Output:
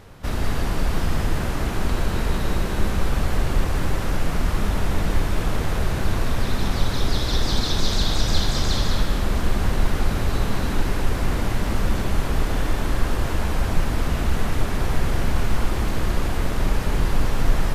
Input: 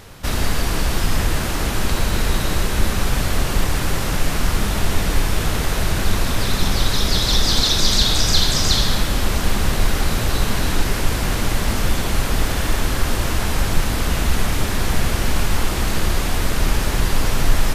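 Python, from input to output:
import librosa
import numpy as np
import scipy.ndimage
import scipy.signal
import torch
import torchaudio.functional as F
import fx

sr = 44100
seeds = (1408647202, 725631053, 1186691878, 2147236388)

y = fx.high_shelf(x, sr, hz=2300.0, db=-9.5)
y = y + 10.0 ** (-6.0 / 20.0) * np.pad(y, (int(204 * sr / 1000.0), 0))[:len(y)]
y = F.gain(torch.from_numpy(y), -3.0).numpy()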